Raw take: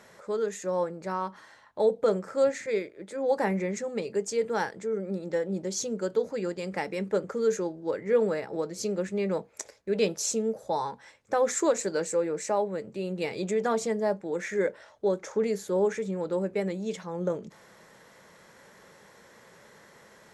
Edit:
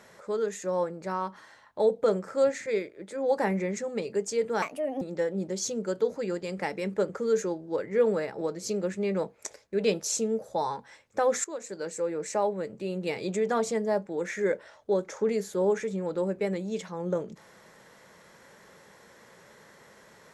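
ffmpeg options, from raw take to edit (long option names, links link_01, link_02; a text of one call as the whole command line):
ffmpeg -i in.wav -filter_complex "[0:a]asplit=4[link_01][link_02][link_03][link_04];[link_01]atrim=end=4.624[link_05];[link_02]atrim=start=4.62:end=5.16,asetpts=PTS-STARTPTS,asetrate=60417,aresample=44100,atrim=end_sample=17382,asetpts=PTS-STARTPTS[link_06];[link_03]atrim=start=5.156:end=11.59,asetpts=PTS-STARTPTS,afade=type=out:start_time=6.43:duration=0.004:curve=hsin:silence=0.125893[link_07];[link_04]atrim=start=11.59,asetpts=PTS-STARTPTS,afade=type=in:duration=0.94:silence=0.125893[link_08];[link_05][link_06]acrossfade=duration=0.004:curve1=hsin:curve2=hsin[link_09];[link_07][link_08]concat=n=2:v=0:a=1[link_10];[link_09][link_10]acrossfade=duration=0.004:curve1=hsin:curve2=hsin" out.wav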